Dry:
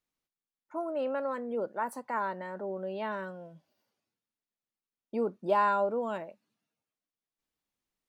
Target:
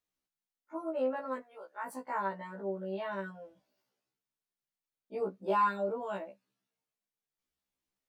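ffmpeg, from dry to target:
ffmpeg -i in.wav -filter_complex "[0:a]asplit=3[link_01][link_02][link_03];[link_01]afade=type=out:start_time=1.39:duration=0.02[link_04];[link_02]highpass=1100,afade=type=in:start_time=1.39:duration=0.02,afade=type=out:start_time=1.85:duration=0.02[link_05];[link_03]afade=type=in:start_time=1.85:duration=0.02[link_06];[link_04][link_05][link_06]amix=inputs=3:normalize=0,afftfilt=real='re*1.73*eq(mod(b,3),0)':imag='im*1.73*eq(mod(b,3),0)':win_size=2048:overlap=0.75" out.wav

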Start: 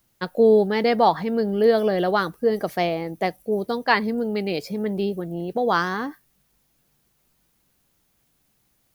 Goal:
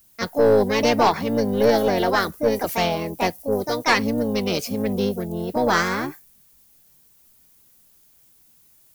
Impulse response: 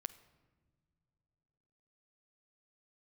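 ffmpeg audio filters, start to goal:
-filter_complex "[0:a]asplit=3[link_01][link_02][link_03];[link_02]asetrate=22050,aresample=44100,atempo=2,volume=-9dB[link_04];[link_03]asetrate=55563,aresample=44100,atempo=0.793701,volume=-3dB[link_05];[link_01][link_04][link_05]amix=inputs=3:normalize=0,crystalizer=i=2:c=0,aeval=exprs='(tanh(2.82*val(0)+0.25)-tanh(0.25))/2.82':channel_layout=same"

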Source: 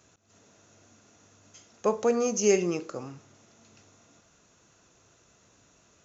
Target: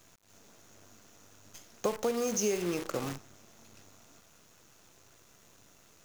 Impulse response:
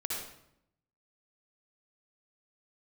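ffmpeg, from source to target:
-af "acompressor=threshold=-32dB:ratio=8,acrusher=bits=8:dc=4:mix=0:aa=0.000001,volume=4.5dB"

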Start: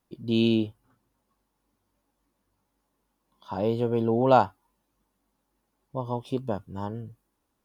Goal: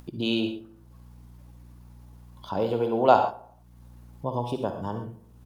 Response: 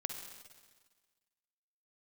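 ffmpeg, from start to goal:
-filter_complex "[0:a]acrossover=split=430[link_01][link_02];[link_01]acompressor=threshold=-32dB:ratio=6[link_03];[link_03][link_02]amix=inputs=2:normalize=0,aeval=exprs='val(0)+0.000631*(sin(2*PI*60*n/s)+sin(2*PI*2*60*n/s)/2+sin(2*PI*3*60*n/s)/3+sin(2*PI*4*60*n/s)/4+sin(2*PI*5*60*n/s)/5)':channel_layout=same,atempo=1.4,asplit=2[link_04][link_05];[link_05]adelay=84,lowpass=frequency=1800:poles=1,volume=-18dB,asplit=2[link_06][link_07];[link_07]adelay=84,lowpass=frequency=1800:poles=1,volume=0.46,asplit=2[link_08][link_09];[link_09]adelay=84,lowpass=frequency=1800:poles=1,volume=0.46,asplit=2[link_10][link_11];[link_11]adelay=84,lowpass=frequency=1800:poles=1,volume=0.46[link_12];[link_04][link_06][link_08][link_10][link_12]amix=inputs=5:normalize=0[link_13];[1:a]atrim=start_sample=2205,atrim=end_sample=6174[link_14];[link_13][link_14]afir=irnorm=-1:irlink=0,asplit=2[link_15][link_16];[link_16]acompressor=mode=upward:threshold=-35dB:ratio=2.5,volume=3dB[link_17];[link_15][link_17]amix=inputs=2:normalize=0,volume=-4dB"

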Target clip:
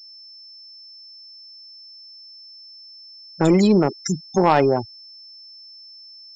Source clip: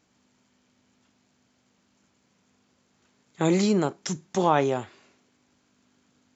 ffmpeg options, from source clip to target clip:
ffmpeg -i in.wav -af "afftfilt=real='re*gte(hypot(re,im),0.0501)':imag='im*gte(hypot(re,im),0.0501)':win_size=1024:overlap=0.75,aeval=exprs='val(0)+0.00355*sin(2*PI*5300*n/s)':channel_layout=same,aeval=exprs='0.447*(cos(1*acos(clip(val(0)/0.447,-1,1)))-cos(1*PI/2))+0.0631*(cos(5*acos(clip(val(0)/0.447,-1,1)))-cos(5*PI/2))+0.00891*(cos(6*acos(clip(val(0)/0.447,-1,1)))-cos(6*PI/2))':channel_layout=same,volume=3.5dB" out.wav

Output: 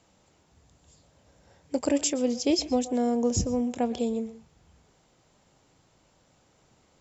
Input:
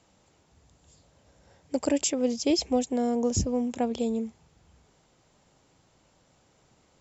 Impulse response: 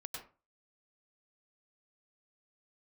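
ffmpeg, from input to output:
-filter_complex "[0:a]asplit=2[link_01][link_02];[1:a]atrim=start_sample=2205,atrim=end_sample=6174,adelay=25[link_03];[link_02][link_03]afir=irnorm=-1:irlink=0,volume=-11dB[link_04];[link_01][link_04]amix=inputs=2:normalize=0"

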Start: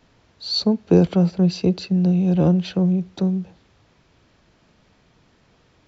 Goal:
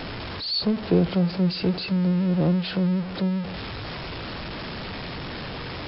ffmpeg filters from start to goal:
ffmpeg -i in.wav -af "aeval=exprs='val(0)+0.5*0.0891*sgn(val(0))':channel_layout=same,volume=-6dB" -ar 12000 -c:a libmp3lame -b:a 32k out.mp3

